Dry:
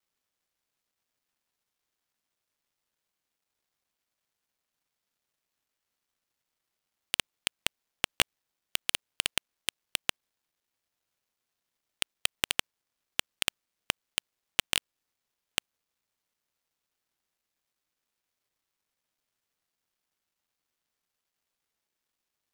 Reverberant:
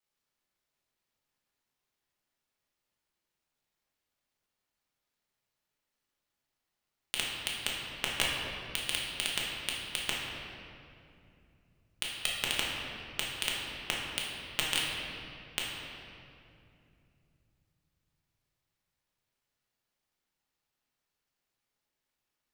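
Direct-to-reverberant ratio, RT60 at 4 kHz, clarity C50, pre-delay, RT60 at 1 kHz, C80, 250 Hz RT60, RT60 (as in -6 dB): -4.5 dB, 1.7 s, -0.5 dB, 5 ms, 2.4 s, 1.0 dB, 4.0 s, 2.7 s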